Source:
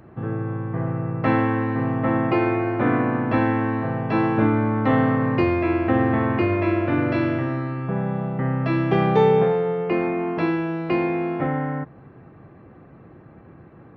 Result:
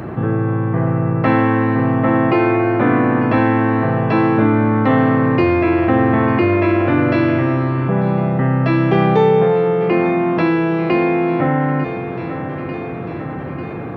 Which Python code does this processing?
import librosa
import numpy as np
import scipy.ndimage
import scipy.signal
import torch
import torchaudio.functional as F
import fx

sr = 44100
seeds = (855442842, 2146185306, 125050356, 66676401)

y = scipy.signal.sosfilt(scipy.signal.butter(2, 73.0, 'highpass', fs=sr, output='sos'), x)
y = fx.echo_feedback(y, sr, ms=895, feedback_pct=54, wet_db=-18.0)
y = fx.env_flatten(y, sr, amount_pct=50)
y = F.gain(torch.from_numpy(y), 3.0).numpy()